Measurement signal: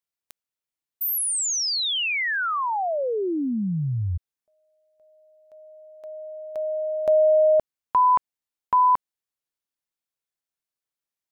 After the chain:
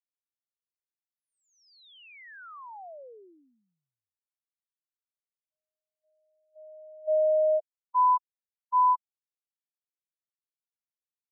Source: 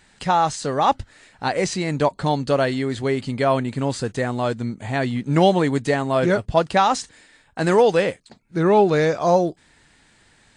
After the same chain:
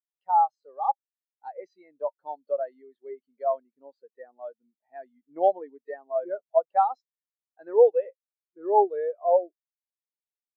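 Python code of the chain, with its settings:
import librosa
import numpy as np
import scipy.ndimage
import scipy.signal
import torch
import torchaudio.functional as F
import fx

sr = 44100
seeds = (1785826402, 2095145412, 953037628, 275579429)

y = fx.bandpass_edges(x, sr, low_hz=460.0, high_hz=5500.0)
y = fx.spectral_expand(y, sr, expansion=2.5)
y = y * 10.0 ** (-3.5 / 20.0)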